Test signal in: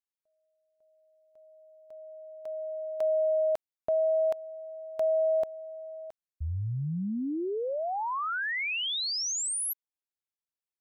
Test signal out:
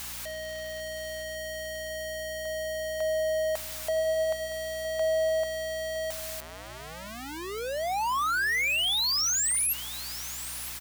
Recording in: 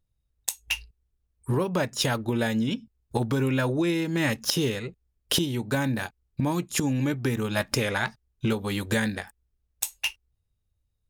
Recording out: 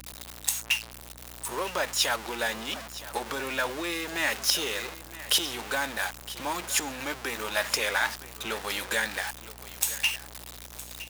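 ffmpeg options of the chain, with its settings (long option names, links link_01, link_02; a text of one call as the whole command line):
ffmpeg -i in.wav -filter_complex "[0:a]aeval=exprs='val(0)+0.5*0.0422*sgn(val(0))':channel_layout=same,highpass=710,aeval=exprs='val(0)+0.00355*(sin(2*PI*60*n/s)+sin(2*PI*2*60*n/s)/2+sin(2*PI*3*60*n/s)/3+sin(2*PI*4*60*n/s)/4+sin(2*PI*5*60*n/s)/5)':channel_layout=same,asplit=2[link_01][link_02];[link_02]aecho=0:1:964:0.158[link_03];[link_01][link_03]amix=inputs=2:normalize=0" out.wav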